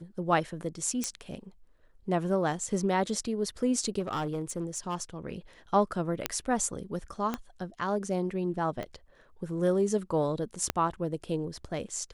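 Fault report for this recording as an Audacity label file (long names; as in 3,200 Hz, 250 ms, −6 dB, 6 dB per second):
1.040000	1.040000	click −15 dBFS
3.990000	5.030000	clipping −27.5 dBFS
6.260000	6.260000	click −9 dBFS
7.340000	7.340000	click −17 dBFS
8.830000	8.830000	click −23 dBFS
10.700000	10.700000	click −12 dBFS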